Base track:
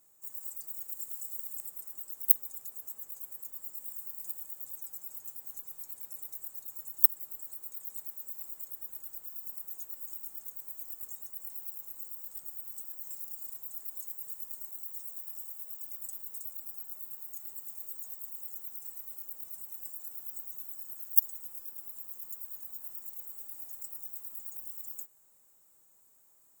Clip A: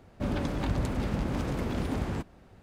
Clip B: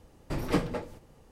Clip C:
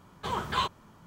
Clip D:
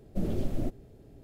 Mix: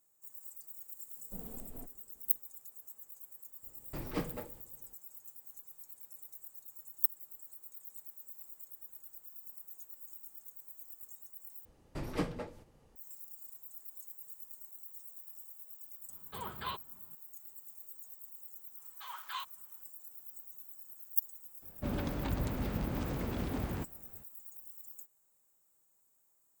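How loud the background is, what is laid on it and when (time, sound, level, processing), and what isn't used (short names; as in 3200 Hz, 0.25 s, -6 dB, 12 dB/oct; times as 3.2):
base track -8 dB
1.16 add D -16 dB + minimum comb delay 4.3 ms
3.63 add B -9.5 dB
11.65 replace with B -7.5 dB
16.09 add C -11.5 dB + downsampling 11025 Hz
18.77 add C -11 dB + HPF 970 Hz 24 dB/oct
21.62 add A -5.5 dB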